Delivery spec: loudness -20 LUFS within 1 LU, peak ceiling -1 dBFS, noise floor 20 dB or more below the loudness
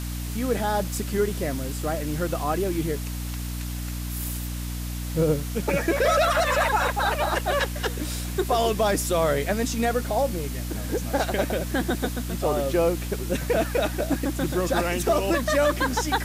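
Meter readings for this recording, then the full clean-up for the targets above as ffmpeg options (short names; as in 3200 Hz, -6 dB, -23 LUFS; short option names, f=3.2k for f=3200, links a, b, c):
hum 60 Hz; harmonics up to 300 Hz; hum level -29 dBFS; noise floor -31 dBFS; noise floor target -46 dBFS; loudness -25.5 LUFS; peak -11.0 dBFS; loudness target -20.0 LUFS
-> -af "bandreject=f=60:t=h:w=4,bandreject=f=120:t=h:w=4,bandreject=f=180:t=h:w=4,bandreject=f=240:t=h:w=4,bandreject=f=300:t=h:w=4"
-af "afftdn=nr=15:nf=-31"
-af "volume=5.5dB"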